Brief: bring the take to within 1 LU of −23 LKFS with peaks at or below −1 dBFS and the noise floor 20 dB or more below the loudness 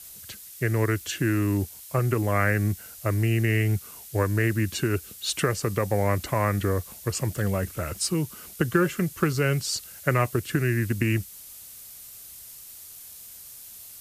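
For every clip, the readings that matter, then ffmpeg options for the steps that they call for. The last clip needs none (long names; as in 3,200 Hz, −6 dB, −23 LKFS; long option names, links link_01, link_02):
background noise floor −45 dBFS; target noise floor −46 dBFS; integrated loudness −26.0 LKFS; sample peak −7.0 dBFS; target loudness −23.0 LKFS
→ -af "afftdn=noise_reduction=6:noise_floor=-45"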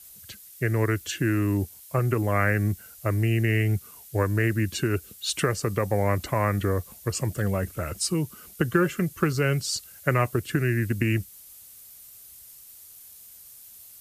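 background noise floor −48 dBFS; integrated loudness −26.0 LKFS; sample peak −7.0 dBFS; target loudness −23.0 LKFS
→ -af "volume=3dB"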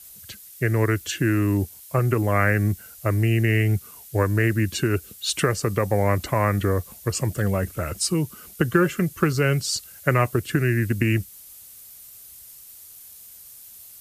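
integrated loudness −23.0 LKFS; sample peak −4.0 dBFS; background noise floor −45 dBFS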